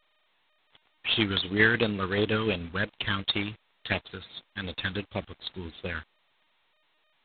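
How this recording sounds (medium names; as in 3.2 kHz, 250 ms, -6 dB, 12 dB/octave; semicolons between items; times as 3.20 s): phasing stages 8, 2.8 Hz, lowest notch 640–2000 Hz; a quantiser's noise floor 10-bit, dither none; tremolo saw down 6.9 Hz, depth 35%; G.726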